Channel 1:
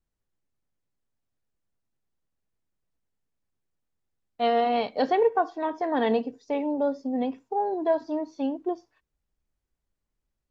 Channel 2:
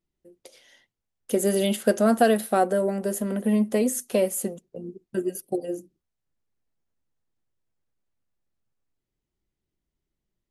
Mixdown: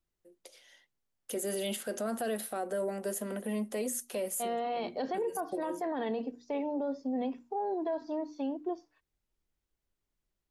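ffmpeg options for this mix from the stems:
ffmpeg -i stem1.wav -i stem2.wav -filter_complex "[0:a]volume=-3.5dB[link_01];[1:a]highpass=frequency=480:poles=1,volume=-3.5dB[link_02];[link_01][link_02]amix=inputs=2:normalize=0,bandreject=frequency=60:width_type=h:width=6,bandreject=frequency=120:width_type=h:width=6,bandreject=frequency=180:width_type=h:width=6,bandreject=frequency=240:width_type=h:width=6,bandreject=frequency=300:width_type=h:width=6,acrossover=split=440[link_03][link_04];[link_04]acompressor=threshold=-30dB:ratio=2.5[link_05];[link_03][link_05]amix=inputs=2:normalize=0,alimiter=level_in=2dB:limit=-24dB:level=0:latency=1:release=34,volume=-2dB" out.wav

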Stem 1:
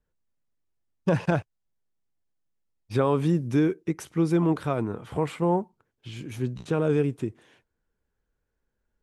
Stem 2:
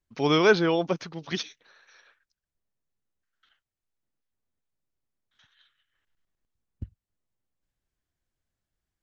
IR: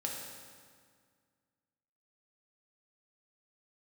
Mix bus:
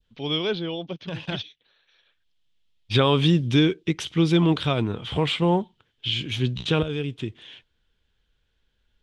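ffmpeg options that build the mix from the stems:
-filter_complex "[0:a]crystalizer=i=6.5:c=0,volume=0dB[link_01];[1:a]equalizer=frequency=1400:width=0.87:gain=-6,volume=-7.5dB,asplit=2[link_02][link_03];[link_03]apad=whole_len=397953[link_04];[link_01][link_04]sidechaincompress=threshold=-48dB:ratio=5:attack=16:release=887[link_05];[link_05][link_02]amix=inputs=2:normalize=0,adynamicequalizer=threshold=0.00708:dfrequency=1600:dqfactor=0.77:tfrequency=1600:tqfactor=0.77:attack=5:release=100:ratio=0.375:range=2:mode=cutabove:tftype=bell,lowpass=frequency=3300:width_type=q:width=4.5,lowshelf=frequency=170:gain=9"

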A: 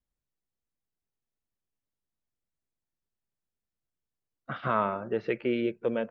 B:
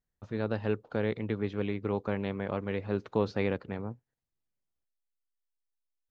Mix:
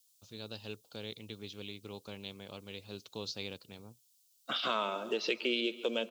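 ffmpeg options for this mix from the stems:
ffmpeg -i stem1.wav -i stem2.wav -filter_complex "[0:a]highpass=frequency=230:width=0.5412,highpass=frequency=230:width=1.3066,volume=-0.5dB,asplit=2[link_01][link_02];[link_02]volume=-21dB[link_03];[1:a]volume=-15dB[link_04];[link_03]aecho=0:1:139|278|417|556|695|834|973|1112|1251:1|0.58|0.336|0.195|0.113|0.0656|0.0381|0.0221|0.0128[link_05];[link_01][link_04][link_05]amix=inputs=3:normalize=0,aexciter=amount=10.3:drive=8.3:freq=2900,acompressor=threshold=-31dB:ratio=2.5" out.wav

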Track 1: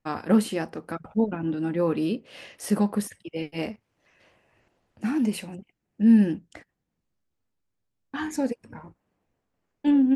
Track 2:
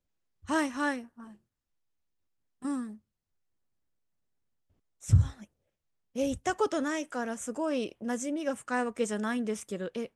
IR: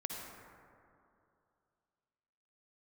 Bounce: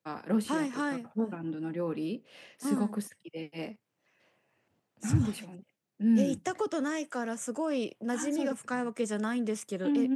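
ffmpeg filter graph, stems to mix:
-filter_complex "[0:a]volume=-8dB[link_01];[1:a]volume=1dB[link_02];[link_01][link_02]amix=inputs=2:normalize=0,highpass=frequency=120:width=0.5412,highpass=frequency=120:width=1.3066,acrossover=split=340[link_03][link_04];[link_04]acompressor=threshold=-31dB:ratio=6[link_05];[link_03][link_05]amix=inputs=2:normalize=0"

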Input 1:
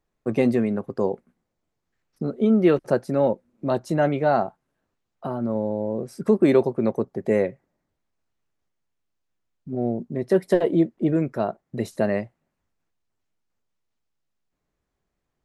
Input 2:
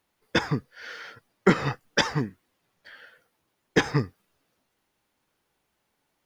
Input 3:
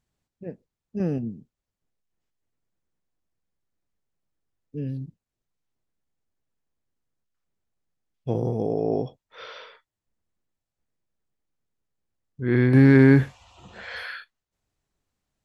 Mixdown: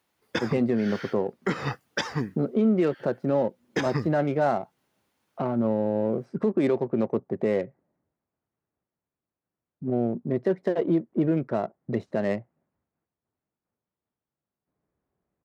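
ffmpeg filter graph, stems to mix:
ffmpeg -i stem1.wav -i stem2.wav -filter_complex "[0:a]adynamicsmooth=sensitivity=3.5:basefreq=1600,adelay=150,volume=1.5dB[link_01];[1:a]volume=0.5dB[link_02];[link_01][link_02]amix=inputs=2:normalize=0,highpass=87,alimiter=limit=-14.5dB:level=0:latency=1:release=271" out.wav

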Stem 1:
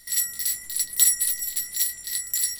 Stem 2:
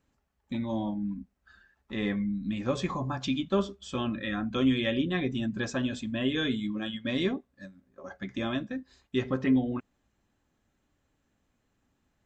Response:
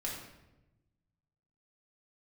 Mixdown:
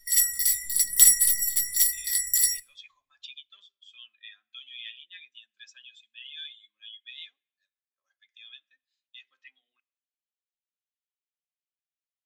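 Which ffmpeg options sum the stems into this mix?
-filter_complex "[0:a]bandreject=frequency=4000:width=6.7,aeval=exprs='0.631*(cos(1*acos(clip(val(0)/0.631,-1,1)))-cos(1*PI/2))+0.01*(cos(6*acos(clip(val(0)/0.631,-1,1)))-cos(6*PI/2))':channel_layout=same,volume=1.5dB,asplit=2[link_01][link_02];[link_02]volume=-14dB[link_03];[1:a]asoftclip=type=tanh:threshold=-17dB,highpass=frequency=2900:width_type=q:width=1.6,volume=-7.5dB,asplit=2[link_04][link_05];[link_05]volume=-19.5dB[link_06];[2:a]atrim=start_sample=2205[link_07];[link_03][link_06]amix=inputs=2:normalize=0[link_08];[link_08][link_07]afir=irnorm=-1:irlink=0[link_09];[link_01][link_04][link_09]amix=inputs=3:normalize=0,afftdn=noise_reduction=16:noise_floor=-41,bandreject=frequency=850:width=25"

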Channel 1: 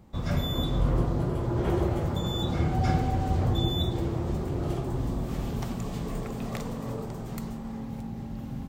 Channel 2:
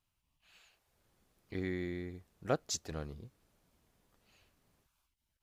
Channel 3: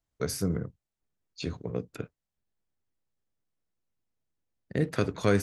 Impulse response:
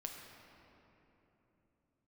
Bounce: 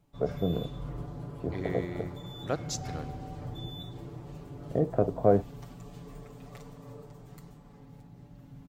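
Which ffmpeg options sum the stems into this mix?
-filter_complex "[0:a]aecho=1:1:6.9:0.84,volume=-15.5dB[link_01];[1:a]volume=-1dB,asplit=2[link_02][link_03];[link_03]volume=-8.5dB[link_04];[2:a]lowpass=frequency=690:width_type=q:width=4.9,volume=-2dB[link_05];[3:a]atrim=start_sample=2205[link_06];[link_04][link_06]afir=irnorm=-1:irlink=0[link_07];[link_01][link_02][link_05][link_07]amix=inputs=4:normalize=0"

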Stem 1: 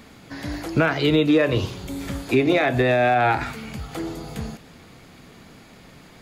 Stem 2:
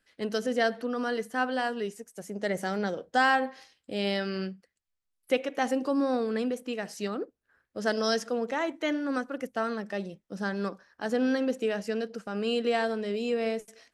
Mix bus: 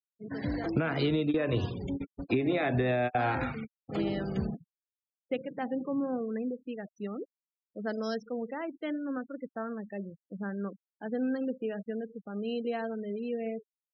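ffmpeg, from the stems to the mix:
ffmpeg -i stem1.wav -i stem2.wav -filter_complex "[0:a]highpass=frequency=140:poles=1,volume=-6dB[link_01];[1:a]highshelf=frequency=7400:gain=-10.5,volume=-9dB,afade=type=in:start_time=2.91:duration=0.46:silence=0.398107,asplit=2[link_02][link_03];[link_03]apad=whole_len=274186[link_04];[link_01][link_04]sidechaingate=range=-33dB:threshold=-58dB:ratio=16:detection=peak[link_05];[link_05][link_02]amix=inputs=2:normalize=0,afftfilt=real='re*gte(hypot(re,im),0.01)':imag='im*gte(hypot(re,im),0.01)':win_size=1024:overlap=0.75,lowshelf=frequency=320:gain=9.5,acompressor=threshold=-24dB:ratio=10" out.wav

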